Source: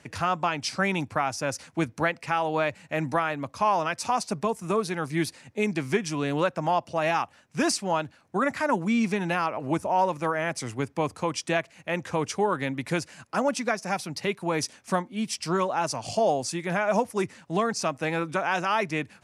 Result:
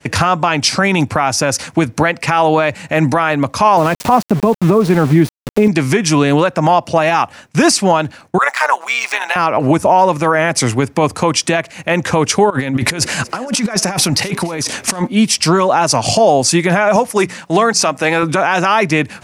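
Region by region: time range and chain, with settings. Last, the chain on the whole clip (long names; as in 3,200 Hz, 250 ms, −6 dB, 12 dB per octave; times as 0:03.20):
0:03.77–0:05.68: high-pass filter 250 Hz 6 dB per octave + spectral tilt −4.5 dB per octave + centre clipping without the shift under −37 dBFS
0:08.38–0:09.36: running median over 3 samples + high-pass filter 750 Hz 24 dB per octave + amplitude modulation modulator 130 Hz, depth 55%
0:12.50–0:15.07: compressor whose output falls as the input rises −38 dBFS + echo with shifted repeats 232 ms, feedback 45%, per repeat +120 Hz, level −21 dB
0:16.96–0:18.23: low-shelf EQ 230 Hz −10 dB + mains-hum notches 60/120/180 Hz
whole clip: downward expander −51 dBFS; downward compressor 2 to 1, threshold −28 dBFS; boost into a limiter +21 dB; level −1 dB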